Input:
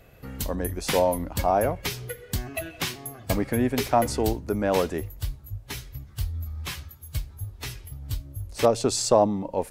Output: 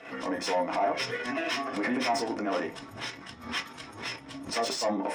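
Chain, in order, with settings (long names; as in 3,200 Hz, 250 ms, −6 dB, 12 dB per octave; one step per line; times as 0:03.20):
Butterworth low-pass 9,300 Hz 36 dB per octave
parametric band 290 Hz +8 dB 0.21 octaves
transient designer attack −2 dB, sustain +10 dB
downward compressor 3 to 1, threshold −30 dBFS, peak gain reduction 12.5 dB
time stretch by overlap-add 0.53×, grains 128 ms
mid-hump overdrive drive 14 dB, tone 7,100 Hz, clips at −21.5 dBFS
convolution reverb RT60 0.25 s, pre-delay 3 ms, DRR 2 dB
background raised ahead of every attack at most 110 dB per second
level −5.5 dB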